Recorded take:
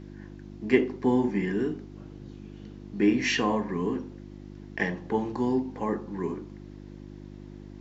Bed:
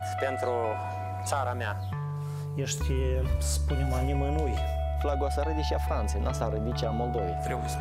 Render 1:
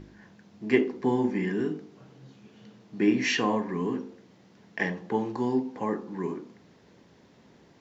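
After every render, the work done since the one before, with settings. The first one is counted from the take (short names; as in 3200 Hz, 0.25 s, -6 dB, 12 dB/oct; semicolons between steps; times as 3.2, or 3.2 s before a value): de-hum 50 Hz, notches 10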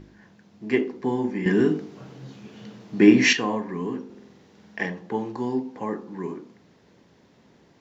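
1.46–3.33 gain +9 dB; 4.05–4.86 flutter echo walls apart 8.2 m, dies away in 1.2 s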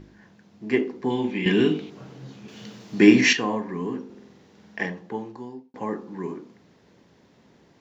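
1.1–1.9 band shelf 3000 Hz +13 dB 1 oct; 2.48–3.21 high shelf 2600 Hz +10 dB; 4.83–5.74 fade out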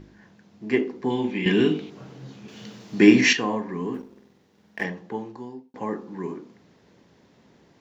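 3.94–4.84 G.711 law mismatch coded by A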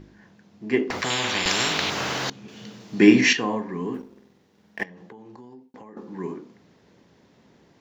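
0.9–2.3 spectral compressor 10:1; 4.83–5.97 compressor 20:1, threshold -40 dBFS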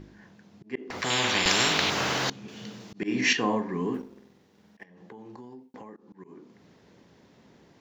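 auto swell 0.42 s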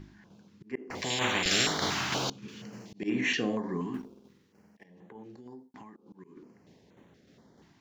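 tremolo saw down 3.3 Hz, depth 45%; stepped notch 4.2 Hz 500–5000 Hz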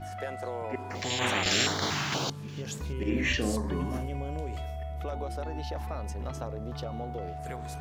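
add bed -7 dB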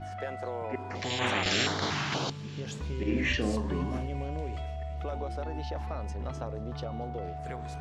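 air absorption 77 m; thin delay 0.232 s, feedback 82%, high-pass 2500 Hz, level -23.5 dB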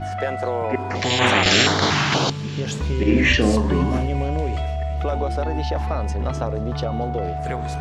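gain +12 dB; limiter -3 dBFS, peak gain reduction 1.5 dB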